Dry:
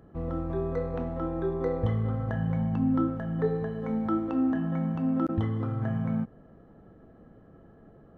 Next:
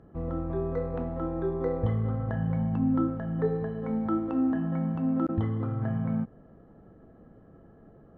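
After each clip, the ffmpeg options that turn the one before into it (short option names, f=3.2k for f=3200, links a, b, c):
-af "aemphasis=mode=reproduction:type=75kf"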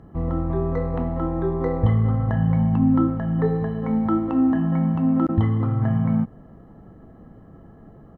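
-af "aecho=1:1:1:0.34,volume=7dB"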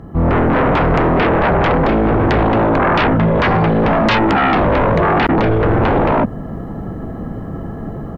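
-af "dynaudnorm=f=160:g=3:m=9dB,aeval=exprs='0.841*sin(PI/2*6.31*val(0)/0.841)':c=same,volume=-8.5dB"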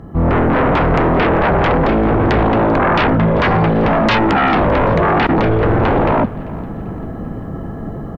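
-af "aecho=1:1:392|784|1176|1568:0.1|0.05|0.025|0.0125"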